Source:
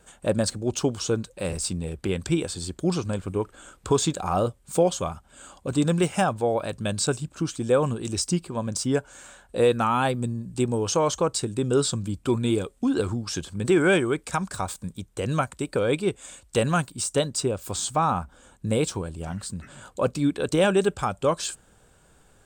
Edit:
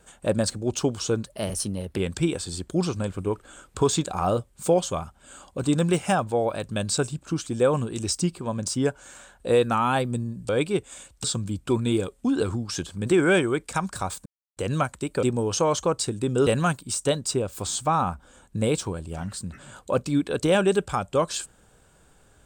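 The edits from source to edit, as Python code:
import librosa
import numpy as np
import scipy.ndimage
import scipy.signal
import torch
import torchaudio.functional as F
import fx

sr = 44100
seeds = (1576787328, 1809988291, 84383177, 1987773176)

y = fx.edit(x, sr, fx.speed_span(start_s=1.26, length_s=0.8, speed=1.13),
    fx.swap(start_s=10.58, length_s=1.24, other_s=15.81, other_length_s=0.75),
    fx.silence(start_s=14.84, length_s=0.31), tone=tone)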